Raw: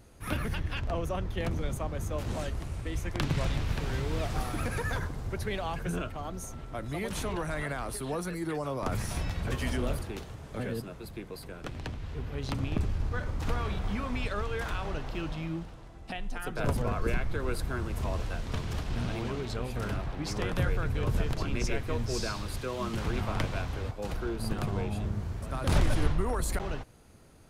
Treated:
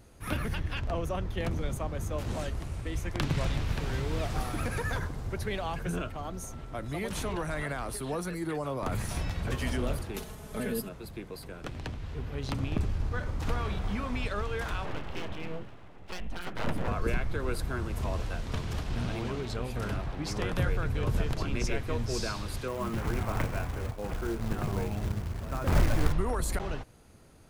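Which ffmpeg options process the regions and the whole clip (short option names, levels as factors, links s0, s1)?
-filter_complex "[0:a]asettb=1/sr,asplit=3[s0][s1][s2];[s0]atrim=end=8.444[s3];[s1]atrim=start=8.44:end=9.09,asetpts=PTS-STARTPTS,afade=t=in:d=0.004:c=qsin,afade=t=out:st=0.646:d=0.004:c=qsin,equalizer=f=5500:w=6.4:g=-8.5,asoftclip=type=hard:threshold=0.0562[s4];[s2]atrim=start=9.086[s5];[s3][s4]acrossfade=d=0.004:c1=hsin:c2=qsin[s6];[s6][s5]acrossfade=d=0.004:c1=qsin:c2=hsin,asettb=1/sr,asplit=3[s7][s8][s9];[s7]atrim=end=10.144[s10];[s8]atrim=start=10.14:end=10.89,asetpts=PTS-STARTPTS,afade=t=in:d=0.004:c=qsin,afade=t=out:st=0.746:d=0.004:c=qsin,equalizer=f=12000:w=0.91:g=13.5,aecho=1:1:4.7:0.64,atrim=end_sample=33075[s11];[s9]atrim=start=10.886[s12];[s10][s11]acrossfade=d=0.004:c1=hsin:c2=qsin[s13];[s13][s12]acrossfade=d=0.004:c1=qsin:c2=hsin,asettb=1/sr,asplit=3[s14][s15][s16];[s14]atrim=end=14.854[s17];[s15]atrim=start=14.85:end=16.88,asetpts=PTS-STARTPTS,afade=t=in:d=0.004:c=qsin,afade=t=out:st=2.026:d=0.004:c=qsin,highshelf=f=3700:t=q:w=1.5:g=-8,aeval=exprs='abs(val(0))':c=same[s18];[s16]atrim=start=16.876[s19];[s17][s18]acrossfade=d=0.004:c1=hsin:c2=qsin[s20];[s20][s19]acrossfade=d=0.004:c1=qsin:c2=hsin,asettb=1/sr,asplit=3[s21][s22][s23];[s21]atrim=end=22.684[s24];[s22]atrim=start=22.68:end=26.13,asetpts=PTS-STARTPTS,afade=t=in:d=0.004:c=qsin,afade=t=out:st=3.446:d=0.004:c=qsin,lowpass=f=2500:w=0.5412,lowpass=f=2500:w=1.3066,asplit=2[s25][s26];[s26]adelay=26,volume=0.237[s27];[s25][s27]amix=inputs=2:normalize=0,atrim=end_sample=152145,acrusher=bits=4:mode=log:mix=0:aa=0.000001[s28];[s23]atrim=start=26.126[s29];[s24][s28]acrossfade=d=0.004:c1=hsin:c2=qsin[s30];[s30][s29]acrossfade=d=0.004:c1=qsin:c2=hsin"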